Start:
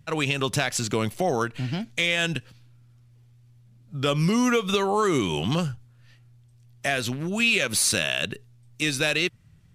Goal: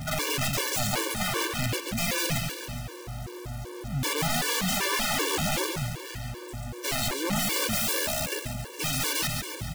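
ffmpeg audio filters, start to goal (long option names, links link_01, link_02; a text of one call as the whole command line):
ffmpeg -i in.wav -filter_complex "[0:a]aeval=exprs='val(0)+0.5*0.0398*sgn(val(0))':channel_layout=same,highpass=frequency=85:poles=1,aeval=exprs='val(0)+0.00708*(sin(2*PI*50*n/s)+sin(2*PI*2*50*n/s)/2+sin(2*PI*3*50*n/s)/3+sin(2*PI*4*50*n/s)/4+sin(2*PI*5*50*n/s)/5)':channel_layout=same,aeval=exprs='(mod(11.2*val(0)+1,2)-1)/11.2':channel_layout=same,asplit=2[link_01][link_02];[link_02]aecho=0:1:139|278|417|556|695|834|973:0.531|0.297|0.166|0.0932|0.0522|0.0292|0.0164[link_03];[link_01][link_03]amix=inputs=2:normalize=0,afftfilt=real='re*gt(sin(2*PI*2.6*pts/sr)*(1-2*mod(floor(b*sr/1024/300),2)),0)':imag='im*gt(sin(2*PI*2.6*pts/sr)*(1-2*mod(floor(b*sr/1024/300),2)),0)':win_size=1024:overlap=0.75" out.wav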